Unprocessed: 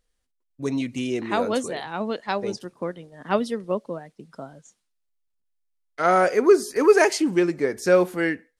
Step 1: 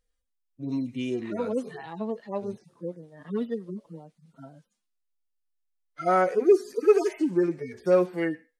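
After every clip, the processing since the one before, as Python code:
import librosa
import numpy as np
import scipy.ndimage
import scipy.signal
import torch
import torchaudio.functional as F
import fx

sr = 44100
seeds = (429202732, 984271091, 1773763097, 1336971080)

y = fx.hpss_only(x, sr, part='harmonic')
y = y * 10.0 ** (-3.0 / 20.0)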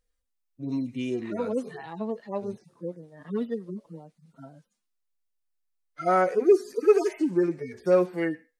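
y = fx.peak_eq(x, sr, hz=3200.0, db=-2.5, octaves=0.32)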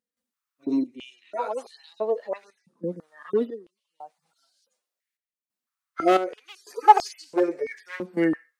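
y = np.minimum(x, 2.0 * 10.0 ** (-17.5 / 20.0) - x)
y = fx.step_gate(y, sr, bpm=90, pattern='.xxxx...xxxxxxx.', floor_db=-12.0, edge_ms=4.5)
y = fx.filter_held_highpass(y, sr, hz=3.0, low_hz=220.0, high_hz=4500.0)
y = y * 10.0 ** (2.0 / 20.0)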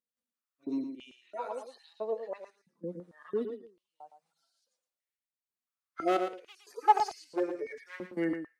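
y = x + 10.0 ** (-8.5 / 20.0) * np.pad(x, (int(113 * sr / 1000.0), 0))[:len(x)]
y = y * 10.0 ** (-9.0 / 20.0)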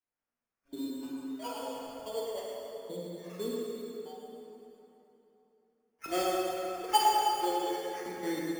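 y = fx.dispersion(x, sr, late='lows', ms=61.0, hz=2500.0)
y = fx.sample_hold(y, sr, seeds[0], rate_hz=3900.0, jitter_pct=0)
y = fx.rev_plate(y, sr, seeds[1], rt60_s=3.4, hf_ratio=0.7, predelay_ms=0, drr_db=-4.5)
y = y * 10.0 ** (-5.5 / 20.0)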